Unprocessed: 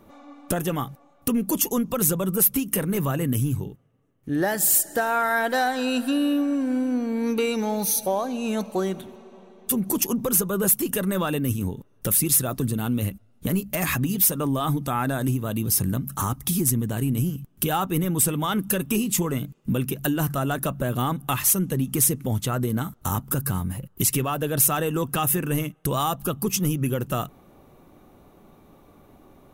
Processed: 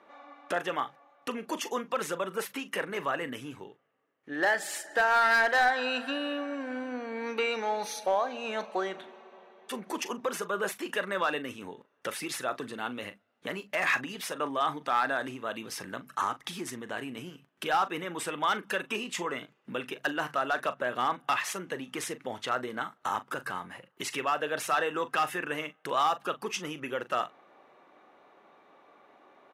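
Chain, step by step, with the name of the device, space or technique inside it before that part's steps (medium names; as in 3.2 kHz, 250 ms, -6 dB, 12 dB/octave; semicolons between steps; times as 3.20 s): megaphone (band-pass 590–3400 Hz; peaking EQ 1.8 kHz +5 dB 0.56 oct; hard clipper -19 dBFS, distortion -18 dB; doubling 40 ms -14 dB)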